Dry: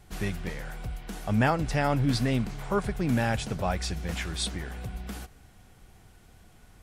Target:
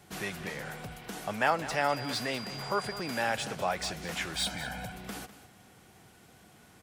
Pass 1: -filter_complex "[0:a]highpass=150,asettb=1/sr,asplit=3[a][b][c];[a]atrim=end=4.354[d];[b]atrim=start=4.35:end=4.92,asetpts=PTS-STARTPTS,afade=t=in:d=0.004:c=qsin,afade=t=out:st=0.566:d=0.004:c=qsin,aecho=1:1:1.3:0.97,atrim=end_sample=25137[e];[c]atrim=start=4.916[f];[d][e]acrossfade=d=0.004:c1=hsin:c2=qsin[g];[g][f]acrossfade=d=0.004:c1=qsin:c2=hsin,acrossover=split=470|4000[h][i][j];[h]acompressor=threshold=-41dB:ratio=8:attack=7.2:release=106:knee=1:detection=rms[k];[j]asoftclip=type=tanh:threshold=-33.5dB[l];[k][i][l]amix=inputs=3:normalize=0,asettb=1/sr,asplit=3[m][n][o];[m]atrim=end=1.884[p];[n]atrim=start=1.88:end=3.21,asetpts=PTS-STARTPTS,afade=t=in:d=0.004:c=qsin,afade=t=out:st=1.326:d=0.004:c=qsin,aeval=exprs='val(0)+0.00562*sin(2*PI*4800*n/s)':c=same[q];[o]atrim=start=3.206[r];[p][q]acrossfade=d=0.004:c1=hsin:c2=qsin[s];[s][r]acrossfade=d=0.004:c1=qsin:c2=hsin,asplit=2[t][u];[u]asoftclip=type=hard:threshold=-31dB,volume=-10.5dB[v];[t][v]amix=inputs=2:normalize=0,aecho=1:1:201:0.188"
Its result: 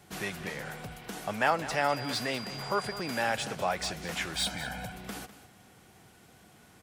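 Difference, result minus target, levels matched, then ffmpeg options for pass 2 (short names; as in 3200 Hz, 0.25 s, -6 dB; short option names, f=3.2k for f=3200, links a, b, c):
hard clip: distortion -4 dB
-filter_complex "[0:a]highpass=150,asettb=1/sr,asplit=3[a][b][c];[a]atrim=end=4.354[d];[b]atrim=start=4.35:end=4.92,asetpts=PTS-STARTPTS,afade=t=in:d=0.004:c=qsin,afade=t=out:st=0.566:d=0.004:c=qsin,aecho=1:1:1.3:0.97,atrim=end_sample=25137[e];[c]atrim=start=4.916[f];[d][e]acrossfade=d=0.004:c1=hsin:c2=qsin[g];[g][f]acrossfade=d=0.004:c1=qsin:c2=hsin,acrossover=split=470|4000[h][i][j];[h]acompressor=threshold=-41dB:ratio=8:attack=7.2:release=106:knee=1:detection=rms[k];[j]asoftclip=type=tanh:threshold=-33.5dB[l];[k][i][l]amix=inputs=3:normalize=0,asettb=1/sr,asplit=3[m][n][o];[m]atrim=end=1.884[p];[n]atrim=start=1.88:end=3.21,asetpts=PTS-STARTPTS,afade=t=in:d=0.004:c=qsin,afade=t=out:st=1.326:d=0.004:c=qsin,aeval=exprs='val(0)+0.00562*sin(2*PI*4800*n/s)':c=same[q];[o]atrim=start=3.206[r];[p][q]acrossfade=d=0.004:c1=hsin:c2=qsin[s];[s][r]acrossfade=d=0.004:c1=qsin:c2=hsin,asplit=2[t][u];[u]asoftclip=type=hard:threshold=-39dB,volume=-10.5dB[v];[t][v]amix=inputs=2:normalize=0,aecho=1:1:201:0.188"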